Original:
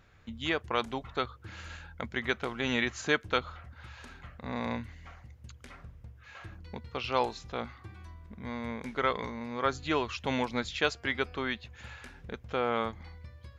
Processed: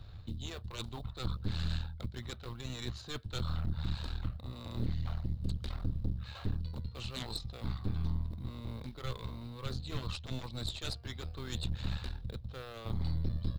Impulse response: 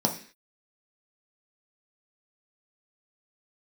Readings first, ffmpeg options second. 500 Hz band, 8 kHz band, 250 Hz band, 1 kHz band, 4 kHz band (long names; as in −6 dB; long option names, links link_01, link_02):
−14.5 dB, −2.5 dB, −6.0 dB, −15.5 dB, −4.5 dB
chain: -filter_complex "[0:a]equalizer=frequency=4600:width_type=o:width=2.1:gain=3.5,acrossover=split=310|940[link_01][link_02][link_03];[link_02]aeval=exprs='0.126*sin(PI/2*3.98*val(0)/0.126)':channel_layout=same[link_04];[link_01][link_04][link_03]amix=inputs=3:normalize=0,acrusher=bits=7:mode=log:mix=0:aa=0.000001,areverse,acompressor=threshold=-37dB:ratio=4,areverse,firequalizer=gain_entry='entry(120,0);entry(200,-19);entry(420,-28);entry(1100,-23);entry(2100,-25);entry(3900,-5);entry(6200,-24);entry(9400,-19)':delay=0.05:min_phase=1,aeval=exprs='0.0266*(cos(1*acos(clip(val(0)/0.0266,-1,1)))-cos(1*PI/2))+0.0075*(cos(6*acos(clip(val(0)/0.0266,-1,1)))-cos(6*PI/2))':channel_layout=same,asoftclip=type=tanh:threshold=-39.5dB,bandreject=frequency=3300:width=25,volume=15.5dB"